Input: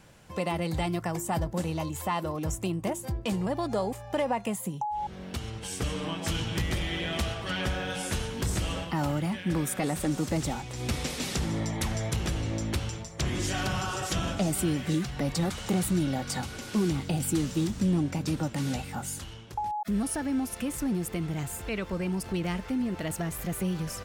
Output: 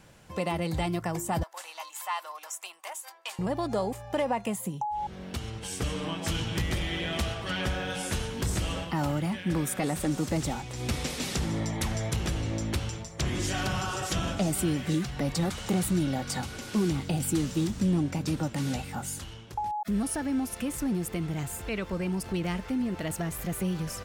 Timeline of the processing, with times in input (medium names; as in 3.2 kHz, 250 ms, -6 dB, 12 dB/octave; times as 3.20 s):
1.43–3.39 s: high-pass 850 Hz 24 dB/octave